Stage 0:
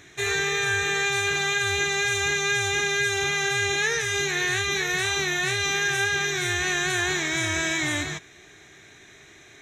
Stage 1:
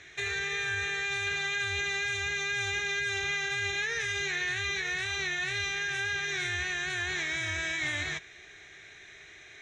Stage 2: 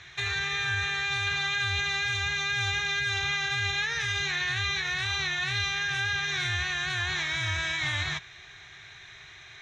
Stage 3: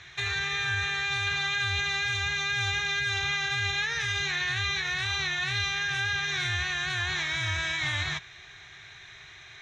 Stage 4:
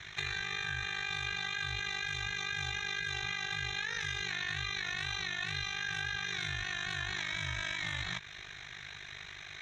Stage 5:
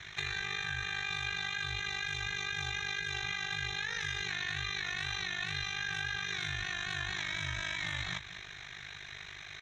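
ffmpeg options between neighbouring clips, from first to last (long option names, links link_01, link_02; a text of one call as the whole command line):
ffmpeg -i in.wav -filter_complex "[0:a]equalizer=frequency=125:width_type=o:width=1:gain=-5,equalizer=frequency=250:width_type=o:width=1:gain=-11,equalizer=frequency=1000:width_type=o:width=1:gain=-5,equalizer=frequency=2000:width_type=o:width=1:gain=4,acrossover=split=140[link_01][link_02];[link_02]alimiter=limit=-21dB:level=0:latency=1:release=142[link_03];[link_01][link_03]amix=inputs=2:normalize=0,lowpass=5600,volume=-1dB" out.wav
ffmpeg -i in.wav -af "equalizer=frequency=125:width_type=o:width=1:gain=7,equalizer=frequency=250:width_type=o:width=1:gain=-9,equalizer=frequency=500:width_type=o:width=1:gain=-10,equalizer=frequency=1000:width_type=o:width=1:gain=7,equalizer=frequency=2000:width_type=o:width=1:gain=-5,equalizer=frequency=4000:width_type=o:width=1:gain=4,equalizer=frequency=8000:width_type=o:width=1:gain=-8,volume=4.5dB" out.wav
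ffmpeg -i in.wav -af anull out.wav
ffmpeg -i in.wav -af "acompressor=threshold=-35dB:ratio=6,aeval=exprs='val(0)*sin(2*PI*25*n/s)':channel_layout=same,volume=4dB" out.wav
ffmpeg -i in.wav -af "aecho=1:1:199:0.2" out.wav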